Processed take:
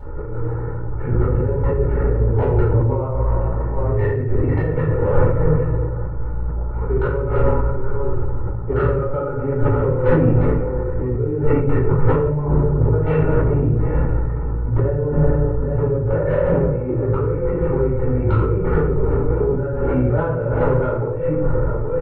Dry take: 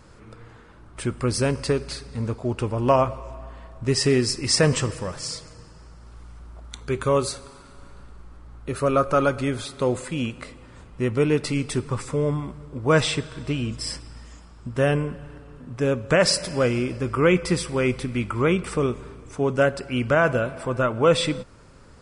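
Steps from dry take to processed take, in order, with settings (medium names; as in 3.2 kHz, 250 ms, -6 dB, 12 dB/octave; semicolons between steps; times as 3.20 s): peaking EQ 120 Hz +2.5 dB 0.36 oct; transient shaper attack -8 dB, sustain +11 dB; Gaussian low-pass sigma 7.1 samples; hum notches 50/100 Hz; comb 2.2 ms, depth 77%; delay 826 ms -21 dB; compressor with a negative ratio -29 dBFS, ratio -1; saturation -20.5 dBFS, distortion -18 dB; reverberation RT60 0.75 s, pre-delay 3 ms, DRR -9.5 dB; decay stretcher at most 52 dB/s; trim -4.5 dB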